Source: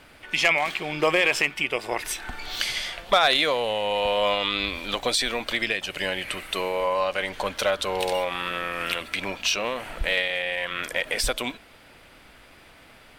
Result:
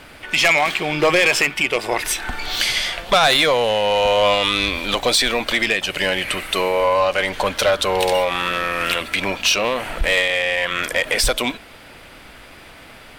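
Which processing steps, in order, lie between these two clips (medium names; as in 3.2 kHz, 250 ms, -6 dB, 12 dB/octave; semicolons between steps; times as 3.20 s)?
saturation -17.5 dBFS, distortion -13 dB; trim +9 dB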